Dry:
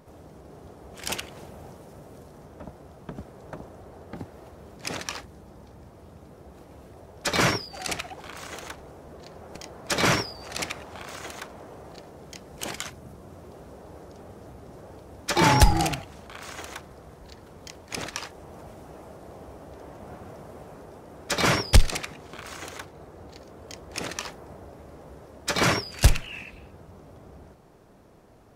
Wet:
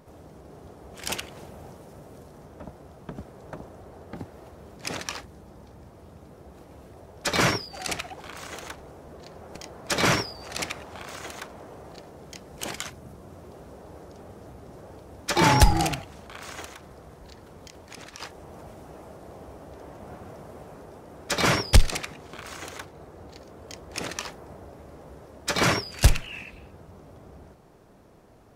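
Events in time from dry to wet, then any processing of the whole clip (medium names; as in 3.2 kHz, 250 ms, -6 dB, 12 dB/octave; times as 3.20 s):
16.65–18.20 s: compression 4:1, threshold -40 dBFS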